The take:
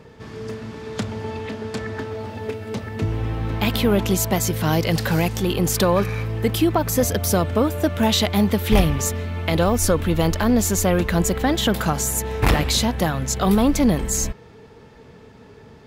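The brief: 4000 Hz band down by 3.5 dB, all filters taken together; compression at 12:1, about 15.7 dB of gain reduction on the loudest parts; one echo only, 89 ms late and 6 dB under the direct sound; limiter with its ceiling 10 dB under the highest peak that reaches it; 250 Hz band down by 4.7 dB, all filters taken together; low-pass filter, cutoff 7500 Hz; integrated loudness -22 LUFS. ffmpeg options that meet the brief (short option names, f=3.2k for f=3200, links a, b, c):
-af "lowpass=7.5k,equalizer=f=250:t=o:g=-6.5,equalizer=f=4k:t=o:g=-4,acompressor=threshold=-28dB:ratio=12,alimiter=level_in=1dB:limit=-24dB:level=0:latency=1,volume=-1dB,aecho=1:1:89:0.501,volume=11.5dB"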